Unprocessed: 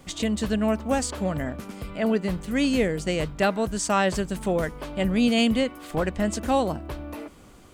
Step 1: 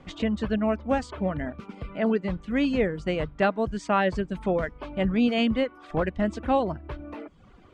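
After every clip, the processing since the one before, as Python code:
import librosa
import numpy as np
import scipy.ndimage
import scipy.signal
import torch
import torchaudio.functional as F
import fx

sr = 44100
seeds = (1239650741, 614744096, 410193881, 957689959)

y = scipy.signal.sosfilt(scipy.signal.butter(2, 2700.0, 'lowpass', fs=sr, output='sos'), x)
y = fx.dereverb_blind(y, sr, rt60_s=0.72)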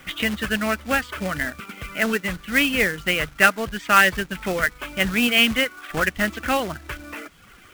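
y = fx.band_shelf(x, sr, hz=2100.0, db=15.5, octaves=1.7)
y = fx.quant_companded(y, sr, bits=4)
y = F.gain(torch.from_numpy(y), -1.0).numpy()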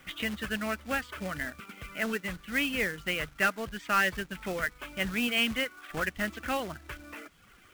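y = 10.0 ** (-7.0 / 20.0) * np.tanh(x / 10.0 ** (-7.0 / 20.0))
y = F.gain(torch.from_numpy(y), -9.0).numpy()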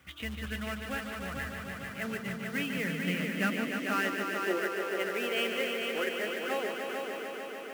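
y = fx.echo_heads(x, sr, ms=148, heads='all three', feedback_pct=73, wet_db=-8.5)
y = fx.filter_sweep_highpass(y, sr, from_hz=73.0, to_hz=400.0, start_s=1.25, end_s=4.83, q=4.9)
y = F.gain(torch.from_numpy(y), -6.5).numpy()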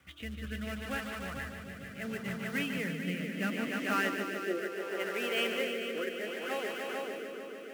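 y = fx.rotary(x, sr, hz=0.7)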